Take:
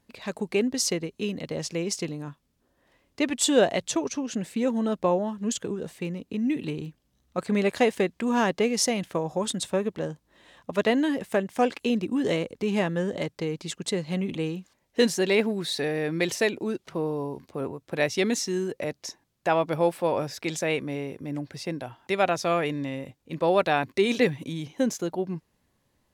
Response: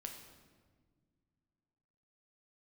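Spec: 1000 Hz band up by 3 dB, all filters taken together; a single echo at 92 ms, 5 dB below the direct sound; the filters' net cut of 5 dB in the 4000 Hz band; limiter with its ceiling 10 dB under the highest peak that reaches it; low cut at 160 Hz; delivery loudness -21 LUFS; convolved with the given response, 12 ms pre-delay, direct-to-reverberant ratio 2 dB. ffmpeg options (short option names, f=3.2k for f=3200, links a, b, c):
-filter_complex "[0:a]highpass=160,equalizer=f=1k:t=o:g=4.5,equalizer=f=4k:t=o:g=-7,alimiter=limit=-17dB:level=0:latency=1,aecho=1:1:92:0.562,asplit=2[a][b];[1:a]atrim=start_sample=2205,adelay=12[c];[b][c]afir=irnorm=-1:irlink=0,volume=1.5dB[d];[a][d]amix=inputs=2:normalize=0,volume=5dB"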